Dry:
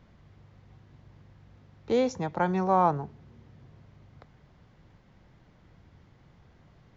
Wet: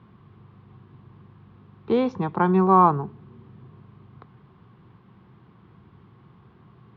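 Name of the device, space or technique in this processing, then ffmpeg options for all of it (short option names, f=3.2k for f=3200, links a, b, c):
guitar cabinet: -af "highpass=89,equalizer=f=120:t=q:w=4:g=7,equalizer=f=200:t=q:w=4:g=7,equalizer=f=380:t=q:w=4:g=8,equalizer=f=580:t=q:w=4:g=-9,equalizer=f=1.1k:t=q:w=4:g=10,equalizer=f=2k:t=q:w=4:g=-5,lowpass=f=3.6k:w=0.5412,lowpass=f=3.6k:w=1.3066,volume=3dB"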